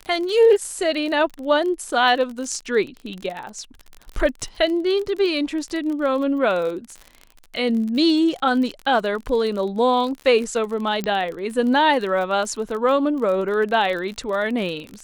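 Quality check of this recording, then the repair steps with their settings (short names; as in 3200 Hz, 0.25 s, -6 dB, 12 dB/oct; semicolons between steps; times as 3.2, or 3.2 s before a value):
crackle 35/s -28 dBFS
11.04 pop -12 dBFS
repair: de-click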